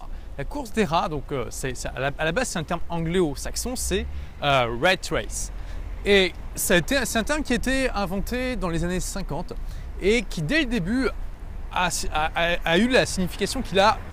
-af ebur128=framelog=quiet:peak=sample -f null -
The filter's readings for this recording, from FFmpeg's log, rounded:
Integrated loudness:
  I:         -24.2 LUFS
  Threshold: -34.5 LUFS
Loudness range:
  LRA:         3.4 LU
  Threshold: -44.7 LUFS
  LRA low:   -26.5 LUFS
  LRA high:  -23.0 LUFS
Sample peak:
  Peak:       -6.9 dBFS